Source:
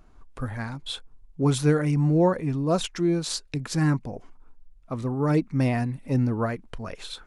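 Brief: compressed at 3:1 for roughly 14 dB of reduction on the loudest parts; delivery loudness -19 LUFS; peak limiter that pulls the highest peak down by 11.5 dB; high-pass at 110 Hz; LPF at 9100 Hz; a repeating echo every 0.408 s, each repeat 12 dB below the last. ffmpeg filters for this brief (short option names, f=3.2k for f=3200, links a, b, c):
-af "highpass=110,lowpass=9.1k,acompressor=threshold=-36dB:ratio=3,alimiter=level_in=8.5dB:limit=-24dB:level=0:latency=1,volume=-8.5dB,aecho=1:1:408|816|1224:0.251|0.0628|0.0157,volume=22.5dB"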